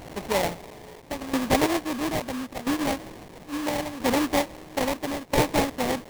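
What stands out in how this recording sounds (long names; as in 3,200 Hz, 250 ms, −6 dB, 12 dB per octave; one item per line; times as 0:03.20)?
a quantiser's noise floor 8 bits, dither triangular
tremolo saw down 0.75 Hz, depth 80%
aliases and images of a low sample rate 1,400 Hz, jitter 20%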